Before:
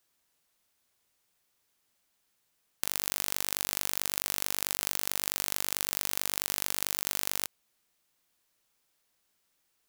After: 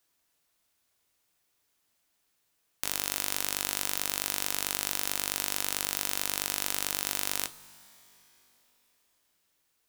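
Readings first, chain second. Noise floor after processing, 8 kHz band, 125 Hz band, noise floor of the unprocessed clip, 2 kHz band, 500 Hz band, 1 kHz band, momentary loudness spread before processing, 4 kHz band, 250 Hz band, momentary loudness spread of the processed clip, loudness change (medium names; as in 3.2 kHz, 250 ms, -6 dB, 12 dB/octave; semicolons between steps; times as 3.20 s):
-75 dBFS, +1.0 dB, -1.0 dB, -76 dBFS, +2.0 dB, +1.5 dB, +2.5 dB, 2 LU, +2.0 dB, +3.0 dB, 2 LU, +0.5 dB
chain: tracing distortion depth 0.074 ms; two-slope reverb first 0.27 s, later 3.9 s, from -18 dB, DRR 10 dB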